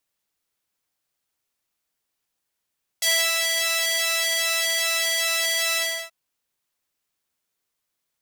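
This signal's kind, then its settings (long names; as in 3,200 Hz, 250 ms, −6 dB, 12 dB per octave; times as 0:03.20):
subtractive patch with pulse-width modulation E5, interval −12 semitones, detune 14 cents, oscillator 2 level −10 dB, sub −15.5 dB, noise −30 dB, filter highpass, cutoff 1,300 Hz, Q 0.7, filter envelope 2 octaves, filter decay 0.06 s, attack 5.9 ms, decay 0.30 s, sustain −4.5 dB, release 0.33 s, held 2.75 s, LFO 2.5 Hz, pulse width 46%, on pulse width 5%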